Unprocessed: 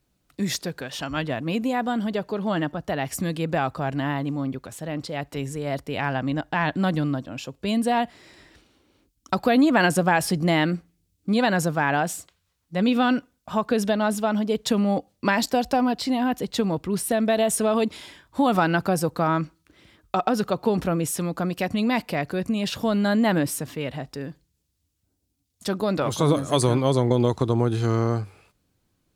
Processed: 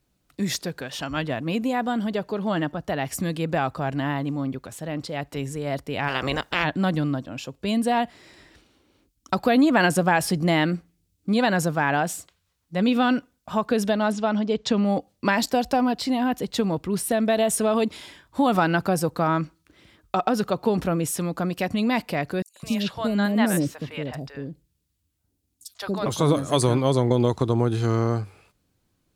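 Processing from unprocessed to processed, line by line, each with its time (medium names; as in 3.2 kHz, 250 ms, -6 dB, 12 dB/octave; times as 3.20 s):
6.07–6.63 s: spectral peaks clipped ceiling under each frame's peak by 22 dB
14.12–14.85 s: low-pass 6.5 kHz 24 dB/octave
22.42–26.06 s: three bands offset in time highs, mids, lows 140/210 ms, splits 600/5600 Hz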